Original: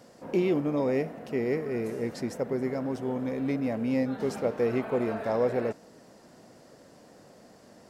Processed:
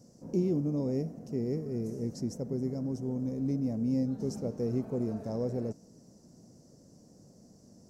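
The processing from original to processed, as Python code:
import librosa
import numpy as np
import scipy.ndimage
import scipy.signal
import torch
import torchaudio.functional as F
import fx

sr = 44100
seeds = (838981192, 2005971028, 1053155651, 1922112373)

y = fx.curve_eq(x, sr, hz=(170.0, 1800.0, 3500.0, 5800.0, 9200.0), db=(0, -26, -24, -1, -10))
y = y * 10.0 ** (3.0 / 20.0)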